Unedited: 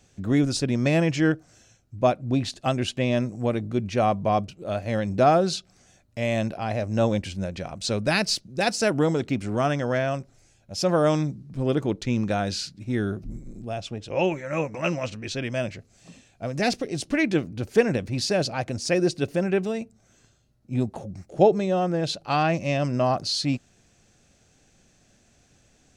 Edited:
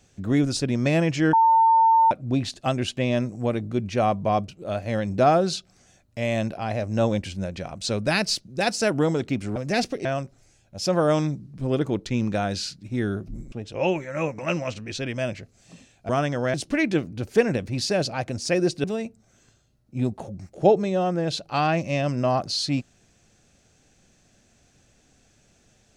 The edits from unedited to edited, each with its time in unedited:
1.33–2.11 s: bleep 902 Hz -13.5 dBFS
9.56–10.01 s: swap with 16.45–16.94 s
13.48–13.88 s: delete
19.24–19.60 s: delete

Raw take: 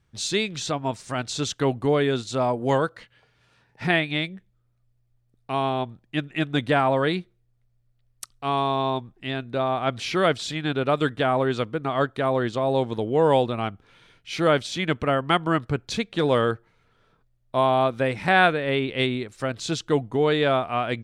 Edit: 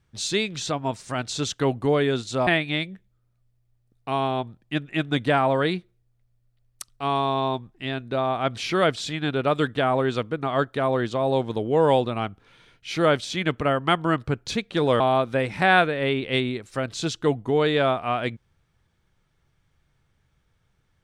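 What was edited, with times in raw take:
2.47–3.89 s: delete
16.42–17.66 s: delete

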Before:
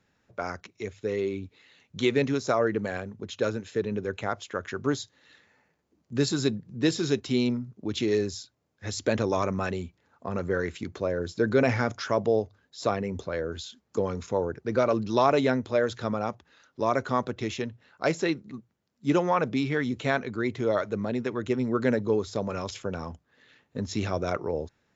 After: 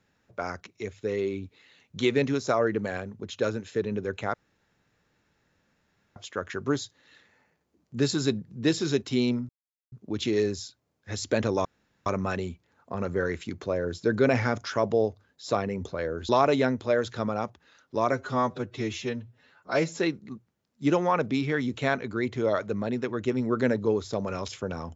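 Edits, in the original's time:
4.34 s: insert room tone 1.82 s
7.67 s: insert silence 0.43 s
9.40 s: insert room tone 0.41 s
13.63–15.14 s: delete
16.97–18.22 s: stretch 1.5×

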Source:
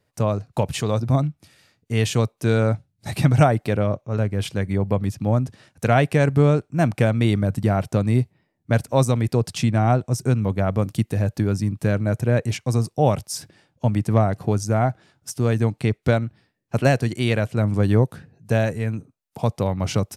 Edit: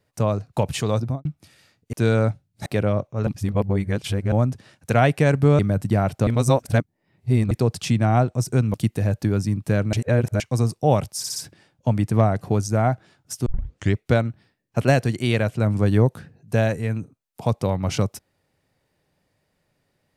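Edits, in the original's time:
0.99–1.25 s: studio fade out
1.93–2.37 s: delete
3.10–3.60 s: delete
4.21–5.26 s: reverse
6.53–7.32 s: delete
8.00–9.24 s: reverse
10.47–10.89 s: delete
12.08–12.55 s: reverse
13.33 s: stutter 0.06 s, 4 plays
15.43 s: tape start 0.50 s

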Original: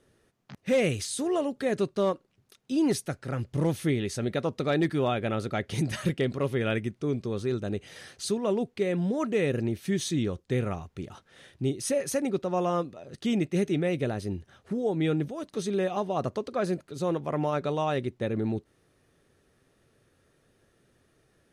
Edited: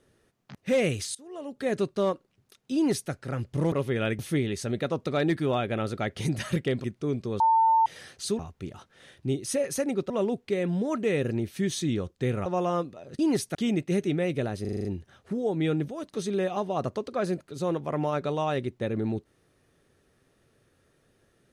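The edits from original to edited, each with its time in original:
1.15–1.68 s: fade in quadratic, from -21.5 dB
2.75–3.11 s: copy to 13.19 s
6.37–6.84 s: move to 3.72 s
7.40–7.86 s: bleep 898 Hz -17.5 dBFS
10.75–12.46 s: move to 8.39 s
14.25 s: stutter 0.04 s, 7 plays

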